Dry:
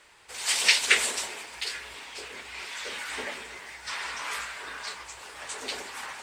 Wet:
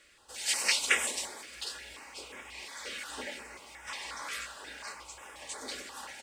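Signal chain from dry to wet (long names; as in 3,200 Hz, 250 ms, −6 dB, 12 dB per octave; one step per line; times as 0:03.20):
comb filter 3.6 ms, depth 36%
notch on a step sequencer 5.6 Hz 900–4,300 Hz
level −3.5 dB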